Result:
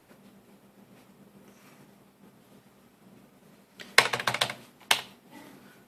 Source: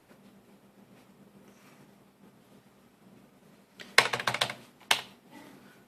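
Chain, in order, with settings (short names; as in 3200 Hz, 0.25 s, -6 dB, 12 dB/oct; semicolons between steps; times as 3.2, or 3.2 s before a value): high shelf 12000 Hz +5 dB; gain +1.5 dB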